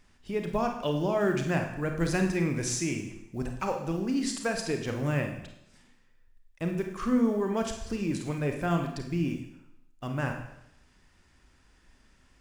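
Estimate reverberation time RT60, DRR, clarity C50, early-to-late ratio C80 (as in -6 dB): 0.80 s, 3.5 dB, 6.0 dB, 9.5 dB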